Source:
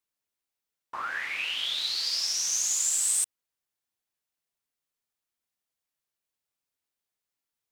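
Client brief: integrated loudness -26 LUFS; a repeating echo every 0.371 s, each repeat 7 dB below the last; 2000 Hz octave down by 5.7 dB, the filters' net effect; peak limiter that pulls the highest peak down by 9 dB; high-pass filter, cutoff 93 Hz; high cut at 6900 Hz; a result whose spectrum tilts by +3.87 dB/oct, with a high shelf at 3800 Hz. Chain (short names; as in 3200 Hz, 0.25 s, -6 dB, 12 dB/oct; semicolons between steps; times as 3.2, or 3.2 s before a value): HPF 93 Hz; LPF 6900 Hz; bell 2000 Hz -9 dB; high shelf 3800 Hz +4.5 dB; limiter -24 dBFS; feedback echo 0.371 s, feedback 45%, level -7 dB; gain +5 dB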